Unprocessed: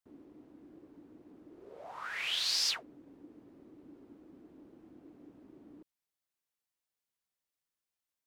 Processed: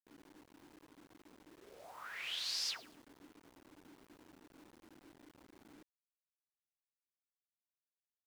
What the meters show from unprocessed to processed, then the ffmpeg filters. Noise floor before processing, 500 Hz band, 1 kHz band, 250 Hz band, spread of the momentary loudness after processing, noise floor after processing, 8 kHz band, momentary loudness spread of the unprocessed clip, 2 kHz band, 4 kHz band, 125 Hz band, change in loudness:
under -85 dBFS, -6.5 dB, -7.0 dB, -7.5 dB, 23 LU, under -85 dBFS, -7.5 dB, 19 LU, -7.5 dB, -7.5 dB, -5.5 dB, -7.5 dB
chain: -filter_complex "[0:a]asplit=2[a][b];[b]adelay=108,lowpass=f=2.4k:p=1,volume=-14dB,asplit=2[c][d];[d]adelay=108,lowpass=f=2.4k:p=1,volume=0.37,asplit=2[e][f];[f]adelay=108,lowpass=f=2.4k:p=1,volume=0.37,asplit=2[g][h];[h]adelay=108,lowpass=f=2.4k:p=1,volume=0.37[i];[a][c][e][g][i]amix=inputs=5:normalize=0,acrusher=bits=8:mix=0:aa=0.000001,volume=-7.5dB"

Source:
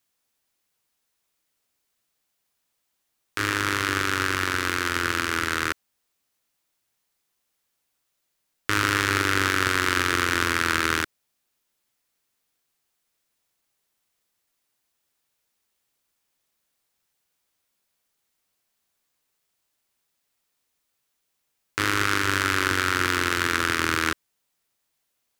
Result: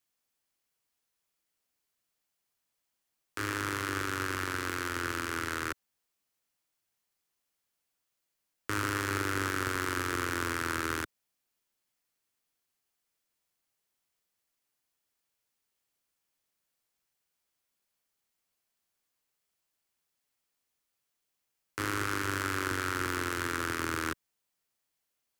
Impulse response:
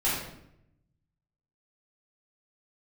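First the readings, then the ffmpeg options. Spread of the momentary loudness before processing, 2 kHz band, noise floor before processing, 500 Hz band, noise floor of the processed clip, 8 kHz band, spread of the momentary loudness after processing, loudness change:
6 LU, -10.5 dB, -77 dBFS, -6.5 dB, -83 dBFS, -8.5 dB, 6 LU, -9.5 dB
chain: -filter_complex "[0:a]bandreject=f=3.7k:w=29,acrossover=split=140|1400|6400[a][b][c][d];[c]alimiter=limit=-20.5dB:level=0:latency=1[e];[a][b][e][d]amix=inputs=4:normalize=0,volume=-6.5dB"

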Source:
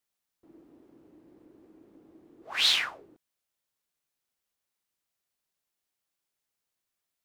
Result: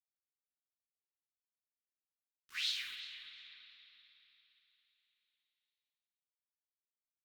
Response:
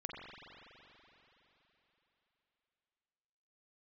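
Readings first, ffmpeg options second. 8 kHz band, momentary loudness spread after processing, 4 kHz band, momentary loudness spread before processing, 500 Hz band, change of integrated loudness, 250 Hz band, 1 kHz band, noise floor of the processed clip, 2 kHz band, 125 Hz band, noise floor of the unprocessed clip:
-13.0 dB, 20 LU, -12.5 dB, 13 LU, under -35 dB, -14.5 dB, under -30 dB, -22.5 dB, under -85 dBFS, -12.0 dB, n/a, under -85 dBFS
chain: -filter_complex "[0:a]lowpass=5.1k,equalizer=f=200:t=o:w=0.61:g=-12,tremolo=f=8.2:d=0.45,aderivative,flanger=delay=9.4:depth=6.6:regen=30:speed=0.71:shape=sinusoidal,acompressor=threshold=-45dB:ratio=4,acrusher=bits=10:mix=0:aa=0.000001,asuperstop=centerf=690:order=4:qfactor=0.64,asplit=2[a][b];[b]adelay=351,lowpass=f=3k:p=1,volume=-11.5dB,asplit=2[c][d];[d]adelay=351,lowpass=f=3k:p=1,volume=0.41,asplit=2[e][f];[f]adelay=351,lowpass=f=3k:p=1,volume=0.41,asplit=2[g][h];[h]adelay=351,lowpass=f=3k:p=1,volume=0.41[i];[a][c][e][g][i]amix=inputs=5:normalize=0,asplit=2[j][k];[1:a]atrim=start_sample=2205,highshelf=f=4k:g=6,adelay=52[l];[k][l]afir=irnorm=-1:irlink=0,volume=-4.5dB[m];[j][m]amix=inputs=2:normalize=0,volume=8.5dB" -ar 44100 -c:a aac -b:a 96k

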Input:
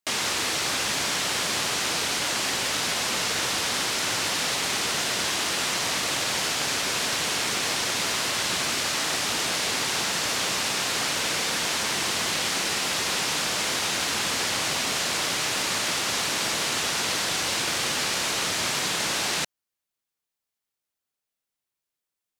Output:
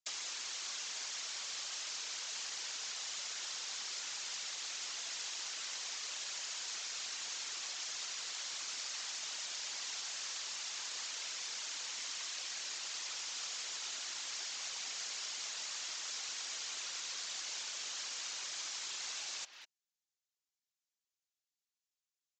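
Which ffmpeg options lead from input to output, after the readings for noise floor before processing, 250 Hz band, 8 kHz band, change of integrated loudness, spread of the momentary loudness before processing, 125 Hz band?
under -85 dBFS, under -30 dB, -13.0 dB, -15.5 dB, 0 LU, under -35 dB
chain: -filter_complex "[0:a]aresample=16000,aresample=44100,asplit=2[a][b];[b]adelay=200,highpass=300,lowpass=3.4k,asoftclip=type=hard:threshold=-21dB,volume=-13dB[c];[a][c]amix=inputs=2:normalize=0,acrossover=split=140|280|1400[d][e][f][g];[d]acompressor=threshold=-48dB:ratio=4[h];[e]acompressor=threshold=-52dB:ratio=4[i];[f]acompressor=threshold=-37dB:ratio=4[j];[g]acompressor=threshold=-37dB:ratio=4[k];[h][i][j][k]amix=inputs=4:normalize=0,aderivative,afftfilt=real='hypot(re,im)*cos(2*PI*random(0))':imag='hypot(re,im)*sin(2*PI*random(1))':win_size=512:overlap=0.75,volume=5.5dB"

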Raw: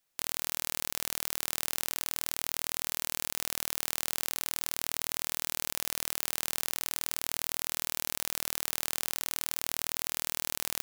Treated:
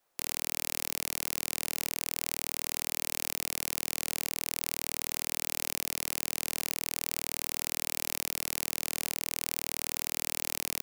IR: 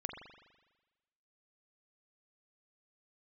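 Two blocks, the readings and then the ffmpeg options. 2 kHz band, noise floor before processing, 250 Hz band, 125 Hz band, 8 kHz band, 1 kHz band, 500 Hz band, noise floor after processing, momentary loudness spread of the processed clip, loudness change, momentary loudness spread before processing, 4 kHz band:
+0.5 dB, -79 dBFS, +3.5 dB, +3.0 dB, 0.0 dB, -2.0 dB, +1.0 dB, -72 dBFS, 0 LU, 0.0 dB, 0 LU, -0.5 dB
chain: -filter_complex "[0:a]acrossover=split=330|1300|4600[a][b][c][d];[a]alimiter=level_in=26.5dB:limit=-24dB:level=0:latency=1,volume=-26.5dB[e];[b]aeval=exprs='0.0224*sin(PI/2*2.51*val(0)/0.0224)':c=same[f];[e][f][c][d]amix=inputs=4:normalize=0"

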